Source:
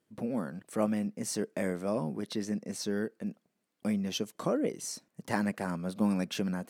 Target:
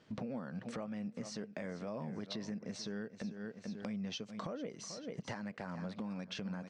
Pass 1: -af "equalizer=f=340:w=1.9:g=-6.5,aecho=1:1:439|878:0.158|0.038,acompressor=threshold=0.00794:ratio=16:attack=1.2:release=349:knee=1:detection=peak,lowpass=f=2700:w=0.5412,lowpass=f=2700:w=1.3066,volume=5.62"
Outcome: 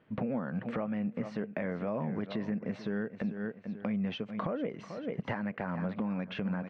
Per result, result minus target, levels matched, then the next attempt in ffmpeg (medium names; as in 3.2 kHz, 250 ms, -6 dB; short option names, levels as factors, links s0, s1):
4 kHz band -9.0 dB; compression: peak gain reduction -8 dB
-af "equalizer=f=340:w=1.9:g=-6.5,aecho=1:1:439|878:0.158|0.038,acompressor=threshold=0.00794:ratio=16:attack=1.2:release=349:knee=1:detection=peak,lowpass=f=5600:w=0.5412,lowpass=f=5600:w=1.3066,volume=5.62"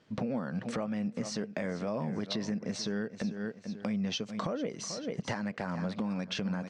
compression: peak gain reduction -8 dB
-af "equalizer=f=340:w=1.9:g=-6.5,aecho=1:1:439|878:0.158|0.038,acompressor=threshold=0.00299:ratio=16:attack=1.2:release=349:knee=1:detection=peak,lowpass=f=5600:w=0.5412,lowpass=f=5600:w=1.3066,volume=5.62"